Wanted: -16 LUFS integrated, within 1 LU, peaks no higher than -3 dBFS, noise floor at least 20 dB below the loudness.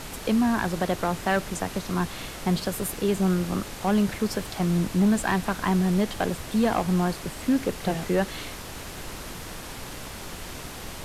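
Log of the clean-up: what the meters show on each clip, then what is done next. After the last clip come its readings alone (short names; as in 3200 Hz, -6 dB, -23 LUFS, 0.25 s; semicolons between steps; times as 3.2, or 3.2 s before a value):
clipped 0.6%; flat tops at -15.5 dBFS; noise floor -38 dBFS; noise floor target -46 dBFS; loudness -26.0 LUFS; peak -15.5 dBFS; loudness target -16.0 LUFS
-> clip repair -15.5 dBFS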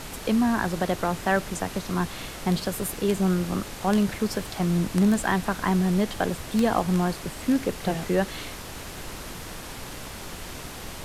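clipped 0.0%; noise floor -38 dBFS; noise floor target -46 dBFS
-> noise print and reduce 8 dB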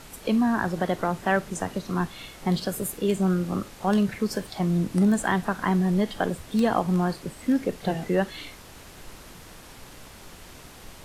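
noise floor -46 dBFS; loudness -26.0 LUFS; peak -8.5 dBFS; loudness target -16.0 LUFS
-> gain +10 dB; limiter -3 dBFS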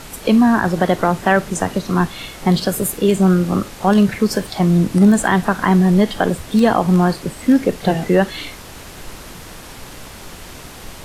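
loudness -16.0 LUFS; peak -3.0 dBFS; noise floor -36 dBFS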